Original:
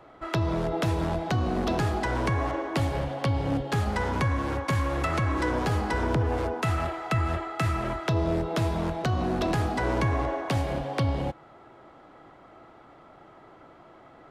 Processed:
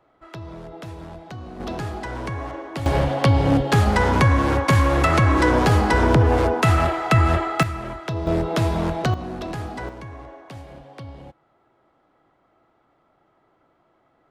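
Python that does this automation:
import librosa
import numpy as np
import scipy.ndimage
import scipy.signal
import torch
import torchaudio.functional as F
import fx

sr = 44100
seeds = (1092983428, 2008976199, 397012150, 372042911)

y = fx.gain(x, sr, db=fx.steps((0.0, -10.0), (1.6, -3.0), (2.86, 9.5), (7.63, -1.5), (8.27, 5.5), (9.14, -4.0), (9.89, -12.0)))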